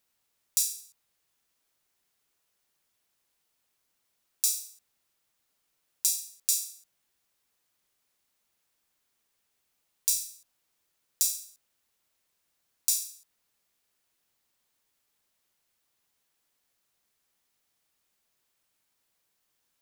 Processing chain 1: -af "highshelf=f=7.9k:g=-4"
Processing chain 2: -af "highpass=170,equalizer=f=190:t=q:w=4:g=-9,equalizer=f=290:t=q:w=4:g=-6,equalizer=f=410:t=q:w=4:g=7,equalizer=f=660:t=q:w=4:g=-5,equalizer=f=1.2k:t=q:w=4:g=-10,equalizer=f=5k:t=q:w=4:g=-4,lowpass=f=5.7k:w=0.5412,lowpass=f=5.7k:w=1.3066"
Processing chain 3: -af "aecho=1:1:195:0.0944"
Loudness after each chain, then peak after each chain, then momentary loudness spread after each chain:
-30.5, -38.5, -28.5 LUFS; -7.0, -18.0, -3.0 dBFS; 14, 13, 14 LU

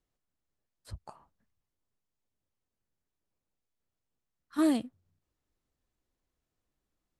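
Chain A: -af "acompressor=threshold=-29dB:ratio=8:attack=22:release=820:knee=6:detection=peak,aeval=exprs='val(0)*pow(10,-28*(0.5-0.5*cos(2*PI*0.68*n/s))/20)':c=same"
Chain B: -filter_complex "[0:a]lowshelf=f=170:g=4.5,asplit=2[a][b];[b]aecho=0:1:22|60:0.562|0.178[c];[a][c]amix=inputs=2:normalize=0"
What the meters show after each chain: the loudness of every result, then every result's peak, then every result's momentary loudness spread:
-42.5, -26.5 LUFS; -25.0, -12.5 dBFS; 8, 20 LU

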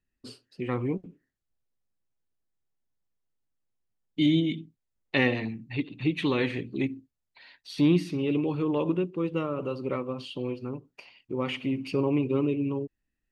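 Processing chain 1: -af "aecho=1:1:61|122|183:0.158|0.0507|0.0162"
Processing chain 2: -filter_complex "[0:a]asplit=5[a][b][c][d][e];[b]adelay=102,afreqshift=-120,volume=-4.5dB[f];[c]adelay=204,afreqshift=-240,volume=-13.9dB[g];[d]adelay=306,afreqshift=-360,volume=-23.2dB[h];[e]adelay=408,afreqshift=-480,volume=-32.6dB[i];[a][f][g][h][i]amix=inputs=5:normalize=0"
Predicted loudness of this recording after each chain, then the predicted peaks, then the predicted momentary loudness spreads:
-28.5, -27.5 LUFS; -10.0, -8.5 dBFS; 14, 14 LU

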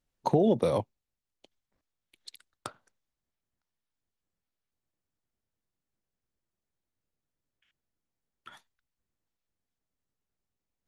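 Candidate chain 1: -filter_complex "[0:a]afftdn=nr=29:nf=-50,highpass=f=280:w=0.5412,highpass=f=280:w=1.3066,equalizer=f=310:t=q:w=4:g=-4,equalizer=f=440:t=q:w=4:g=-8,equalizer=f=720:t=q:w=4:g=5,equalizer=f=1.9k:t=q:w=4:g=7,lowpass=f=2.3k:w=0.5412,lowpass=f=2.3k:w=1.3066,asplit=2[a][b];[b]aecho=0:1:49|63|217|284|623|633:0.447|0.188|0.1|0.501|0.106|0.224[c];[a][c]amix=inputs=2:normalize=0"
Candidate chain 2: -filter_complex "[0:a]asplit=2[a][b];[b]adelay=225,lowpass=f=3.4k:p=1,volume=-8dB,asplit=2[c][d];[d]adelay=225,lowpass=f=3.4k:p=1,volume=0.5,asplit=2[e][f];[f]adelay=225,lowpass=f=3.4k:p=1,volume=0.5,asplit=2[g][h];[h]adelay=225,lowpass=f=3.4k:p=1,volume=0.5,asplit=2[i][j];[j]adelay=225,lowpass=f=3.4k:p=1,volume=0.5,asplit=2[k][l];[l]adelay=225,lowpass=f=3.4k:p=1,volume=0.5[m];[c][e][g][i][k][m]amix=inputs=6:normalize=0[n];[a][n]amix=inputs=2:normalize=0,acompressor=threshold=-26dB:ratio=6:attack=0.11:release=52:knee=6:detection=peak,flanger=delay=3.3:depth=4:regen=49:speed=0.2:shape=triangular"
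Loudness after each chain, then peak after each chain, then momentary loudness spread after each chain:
-30.5, -39.0 LUFS; -14.0, -25.5 dBFS; 19, 21 LU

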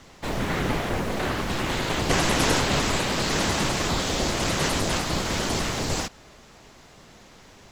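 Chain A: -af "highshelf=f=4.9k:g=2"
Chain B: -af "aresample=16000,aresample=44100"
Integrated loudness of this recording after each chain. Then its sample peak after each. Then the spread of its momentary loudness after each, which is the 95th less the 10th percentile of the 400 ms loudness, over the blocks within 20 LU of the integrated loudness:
-24.5, -25.0 LUFS; -7.0, -7.0 dBFS; 7, 6 LU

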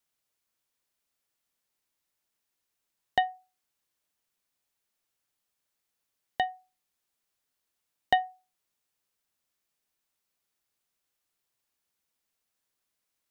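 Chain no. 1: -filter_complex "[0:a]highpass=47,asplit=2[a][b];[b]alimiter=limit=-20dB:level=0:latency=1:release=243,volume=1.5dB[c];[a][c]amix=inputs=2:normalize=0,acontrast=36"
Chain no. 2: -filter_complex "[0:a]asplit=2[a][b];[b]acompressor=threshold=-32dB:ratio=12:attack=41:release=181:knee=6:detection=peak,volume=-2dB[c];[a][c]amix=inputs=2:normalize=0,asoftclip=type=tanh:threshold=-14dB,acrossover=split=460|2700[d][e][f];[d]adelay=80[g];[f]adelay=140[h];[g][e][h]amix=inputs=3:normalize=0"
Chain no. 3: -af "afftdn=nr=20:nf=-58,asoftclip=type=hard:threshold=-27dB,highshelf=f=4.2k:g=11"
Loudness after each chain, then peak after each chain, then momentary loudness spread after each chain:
-23.5, -32.0, -35.5 LUFS; -3.0, -13.0, -17.5 dBFS; 10, 14, 16 LU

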